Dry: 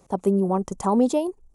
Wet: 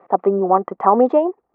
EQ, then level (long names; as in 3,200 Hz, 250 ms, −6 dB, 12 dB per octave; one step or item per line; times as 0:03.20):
loudspeaker in its box 320–2,100 Hz, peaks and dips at 340 Hz +3 dB, 490 Hz +3 dB, 720 Hz +9 dB, 1,200 Hz +9 dB, 1,900 Hz +7 dB
+5.0 dB